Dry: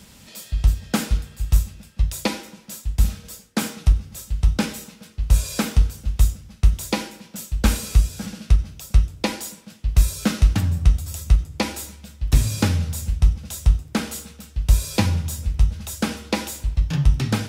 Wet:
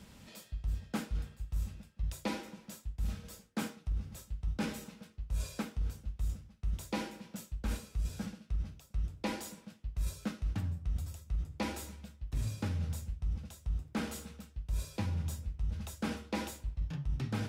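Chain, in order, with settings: treble shelf 3.2 kHz -9 dB; reverse; compression 6:1, threshold -26 dBFS, peak gain reduction 16.5 dB; reverse; trim -6 dB

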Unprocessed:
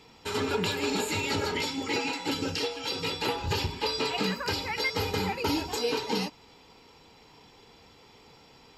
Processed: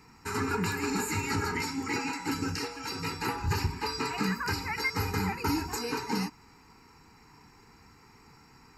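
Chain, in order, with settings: static phaser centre 1.4 kHz, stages 4; trim +3 dB

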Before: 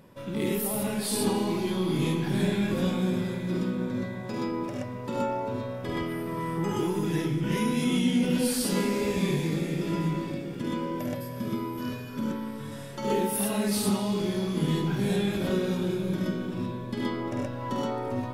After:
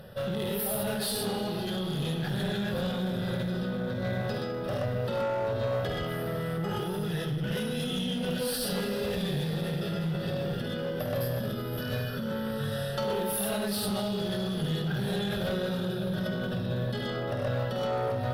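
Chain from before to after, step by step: in parallel at +2 dB: compressor with a negative ratio -35 dBFS, ratio -1; on the sum: static phaser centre 1.5 kHz, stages 8; one-sided clip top -28.5 dBFS

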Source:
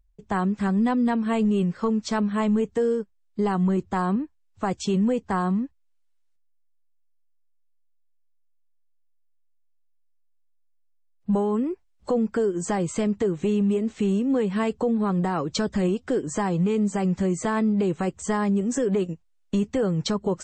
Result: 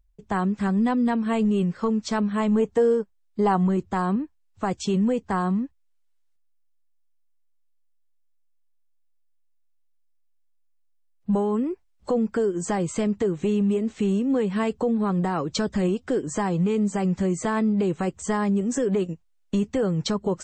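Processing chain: 2.51–3.67 s: dynamic bell 780 Hz, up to +7 dB, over -38 dBFS, Q 0.9

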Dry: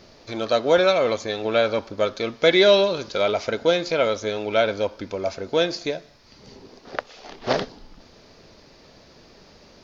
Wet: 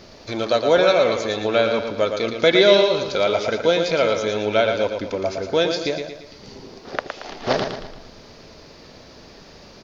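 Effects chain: in parallel at -2.5 dB: compression, threshold -31 dBFS, peak gain reduction 18.5 dB; on the sum: feedback delay 114 ms, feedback 44%, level -6.5 dB

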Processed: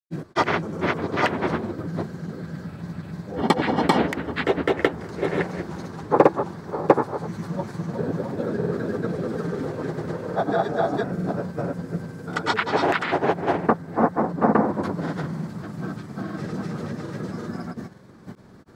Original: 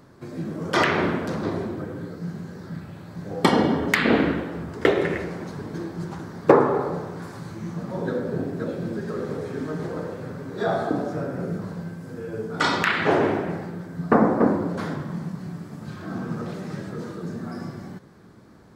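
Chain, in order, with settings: granulator, spray 457 ms, pitch spread up and down by 0 st; in parallel at +2.5 dB: gain riding within 4 dB 0.5 s; on the sum: dynamic bell 830 Hz, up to +5 dB, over -30 dBFS, Q 2.1; trim -7 dB

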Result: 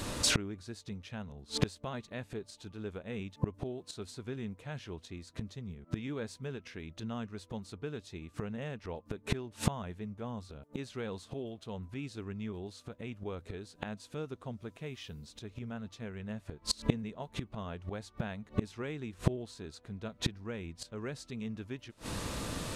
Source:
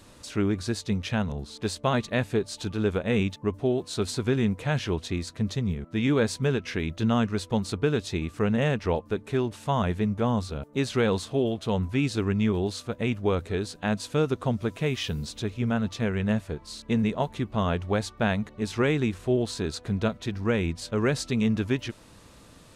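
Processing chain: inverted gate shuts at -28 dBFS, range -29 dB; trim +13.5 dB

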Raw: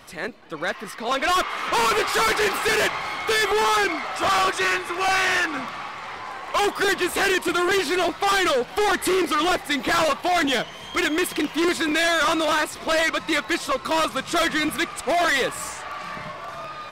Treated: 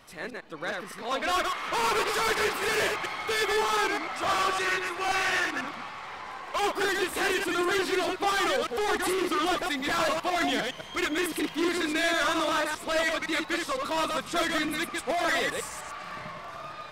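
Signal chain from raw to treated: chunks repeated in reverse 102 ms, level -2.5 dB; trim -7.5 dB

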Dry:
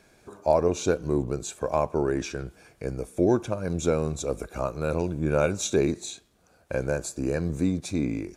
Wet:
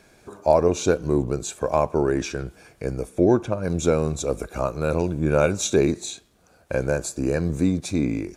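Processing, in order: 3.08–3.62 s: treble shelf 6.7 kHz -> 3.9 kHz -9 dB; trim +4 dB

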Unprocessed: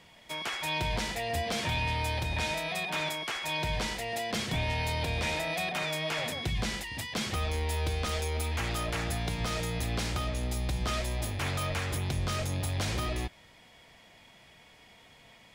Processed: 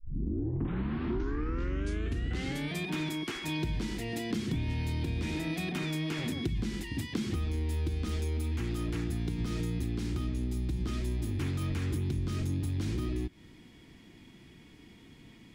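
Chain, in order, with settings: tape start-up on the opening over 2.88 s; resonant low shelf 440 Hz +10.5 dB, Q 3; compression 5:1, threshold -26 dBFS, peak gain reduction 10 dB; trim -3.5 dB

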